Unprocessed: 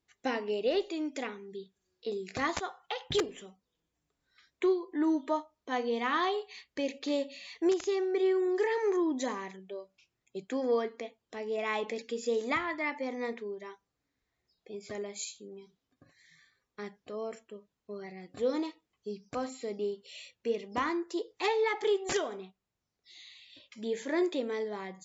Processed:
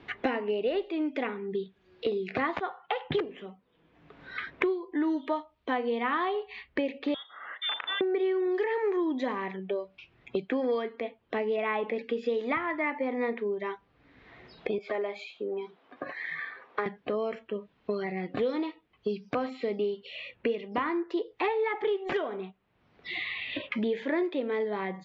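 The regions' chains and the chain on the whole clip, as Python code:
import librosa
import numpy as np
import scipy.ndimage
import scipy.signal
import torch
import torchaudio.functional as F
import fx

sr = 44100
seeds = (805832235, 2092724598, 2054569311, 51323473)

y = fx.chain(x, sr, fx.freq_invert(carrier_hz=3900),
    fx.highpass(hz=1100.0, slope=12),
    fx.air_absorb(metres=250.0), at=(7.14, 8.01))
y = fx.chain(y, sr, fx.highpass(hz=780.0, slope=12),
    fx.tilt_shelf(db=9.0, hz=1300.0), at=(14.78, 16.86))
y = scipy.signal.sosfilt(scipy.signal.butter(4, 3100.0, 'lowpass', fs=sr, output='sos'), y)
y = fx.band_squash(y, sr, depth_pct=100)
y = y * librosa.db_to_amplitude(2.5)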